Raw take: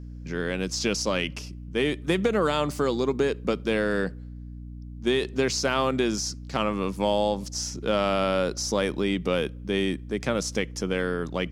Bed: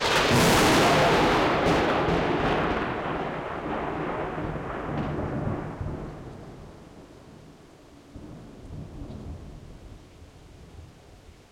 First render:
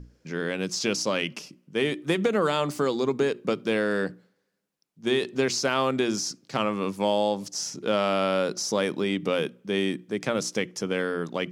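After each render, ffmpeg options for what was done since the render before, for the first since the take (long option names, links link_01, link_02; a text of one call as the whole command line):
ffmpeg -i in.wav -af "bandreject=frequency=60:width_type=h:width=6,bandreject=frequency=120:width_type=h:width=6,bandreject=frequency=180:width_type=h:width=6,bandreject=frequency=240:width_type=h:width=6,bandreject=frequency=300:width_type=h:width=6,bandreject=frequency=360:width_type=h:width=6" out.wav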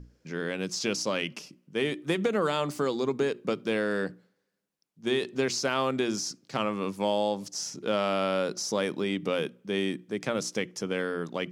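ffmpeg -i in.wav -af "volume=-3dB" out.wav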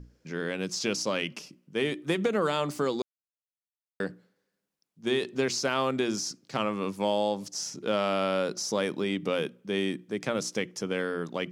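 ffmpeg -i in.wav -filter_complex "[0:a]asplit=3[link_01][link_02][link_03];[link_01]atrim=end=3.02,asetpts=PTS-STARTPTS,afade=type=out:start_time=3.016:duration=0.004:curve=hsin[link_04];[link_02]atrim=start=3.02:end=4,asetpts=PTS-STARTPTS,volume=0[link_05];[link_03]atrim=start=4,asetpts=PTS-STARTPTS,afade=type=in:duration=0.004:curve=hsin[link_06];[link_04][link_05][link_06]concat=n=3:v=0:a=1" out.wav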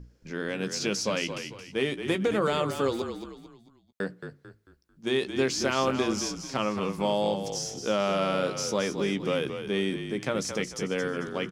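ffmpeg -i in.wav -filter_complex "[0:a]asplit=2[link_01][link_02];[link_02]adelay=15,volume=-12dB[link_03];[link_01][link_03]amix=inputs=2:normalize=0,asplit=5[link_04][link_05][link_06][link_07][link_08];[link_05]adelay=222,afreqshift=-38,volume=-8.5dB[link_09];[link_06]adelay=444,afreqshift=-76,volume=-17.1dB[link_10];[link_07]adelay=666,afreqshift=-114,volume=-25.8dB[link_11];[link_08]adelay=888,afreqshift=-152,volume=-34.4dB[link_12];[link_04][link_09][link_10][link_11][link_12]amix=inputs=5:normalize=0" out.wav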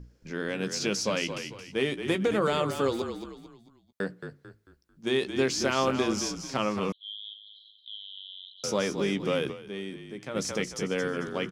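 ffmpeg -i in.wav -filter_complex "[0:a]asettb=1/sr,asplit=3[link_01][link_02][link_03];[link_01]atrim=end=6.924[link_04];[link_02]atrim=start=6.92:end=8.64,asetpts=PTS-STARTPTS,afade=type=in:duration=0.004:curve=qsin,afade=type=out:start_time=1.716:duration=0.004:curve=qsin,asuperpass=centerf=3500:order=12:qfactor=3.6[link_05];[link_03]atrim=start=8.636[link_06];[link_04][link_05]acrossfade=duration=0.004:curve1=hsin:curve2=qsin[link_07];[link_07][link_06]acrossfade=duration=0.004:curve1=qsin:curve2=hsin,asplit=3[link_08][link_09][link_10];[link_08]atrim=end=9.76,asetpts=PTS-STARTPTS,afade=type=out:start_time=9.51:duration=0.25:curve=exp:silence=0.354813[link_11];[link_09]atrim=start=9.76:end=10.12,asetpts=PTS-STARTPTS,volume=-9dB[link_12];[link_10]atrim=start=10.12,asetpts=PTS-STARTPTS,afade=type=in:duration=0.25:curve=exp:silence=0.354813[link_13];[link_11][link_12][link_13]concat=n=3:v=0:a=1" out.wav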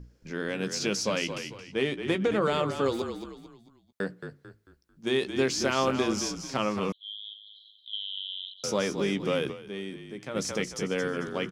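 ffmpeg -i in.wav -filter_complex "[0:a]asettb=1/sr,asplit=3[link_01][link_02][link_03];[link_01]atrim=end=1.584[link_04];[link_02]atrim=start=1.58:end=2.86,asetpts=PTS-STARTPTS,afade=type=in:duration=0.004:curve=qsin,afade=type=out:start_time=1.276:duration=0.004:curve=qsin,adynamicsmooth=sensitivity=2.5:basefreq=7300[link_05];[link_03]atrim=start=2.856[link_06];[link_04][link_05]acrossfade=duration=0.004:curve1=hsin:curve2=qsin[link_07];[link_07][link_06]acrossfade=duration=0.004:curve1=qsin:curve2=hsin,asettb=1/sr,asplit=3[link_08][link_09][link_10];[link_08]atrim=end=7.934[link_11];[link_09]atrim=start=7.93:end=8.54,asetpts=PTS-STARTPTS,afade=type=in:duration=0.004:curve=qsin,afade=type=out:start_time=0.606:duration=0.004:curve=qsin,highpass=frequency=2500:width_type=q:width=6.9[link_12];[link_10]atrim=start=8.536[link_13];[link_11][link_12]acrossfade=duration=0.004:curve1=hsin:curve2=qsin[link_14];[link_14][link_13]acrossfade=duration=0.004:curve1=qsin:curve2=hsin" out.wav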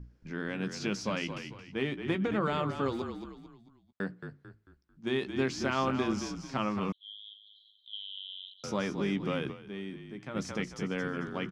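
ffmpeg -i in.wav -af "lowpass=frequency=1700:poles=1,equalizer=frequency=490:width_type=o:width=0.85:gain=-8" out.wav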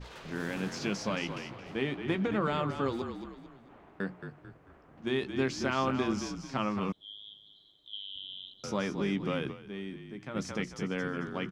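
ffmpeg -i in.wav -i bed.wav -filter_complex "[1:a]volume=-26.5dB[link_01];[0:a][link_01]amix=inputs=2:normalize=0" out.wav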